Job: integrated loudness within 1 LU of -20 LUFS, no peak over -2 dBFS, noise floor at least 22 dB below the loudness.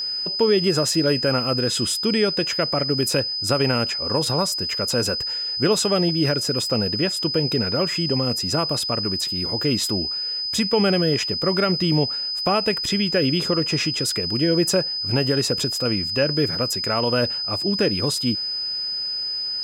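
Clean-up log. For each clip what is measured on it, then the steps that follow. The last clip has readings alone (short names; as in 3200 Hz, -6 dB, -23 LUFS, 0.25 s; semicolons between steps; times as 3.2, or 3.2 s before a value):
steady tone 5000 Hz; tone level -24 dBFS; loudness -21.0 LUFS; peak -8.5 dBFS; loudness target -20.0 LUFS
-> notch 5000 Hz, Q 30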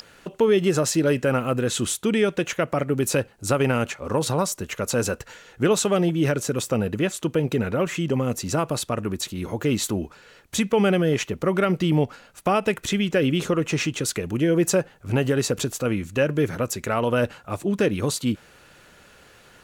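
steady tone none; loudness -23.5 LUFS; peak -9.5 dBFS; loudness target -20.0 LUFS
-> gain +3.5 dB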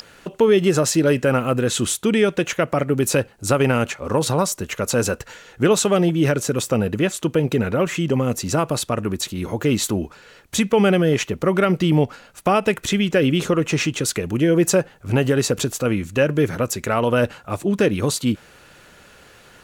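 loudness -20.0 LUFS; peak -6.0 dBFS; noise floor -49 dBFS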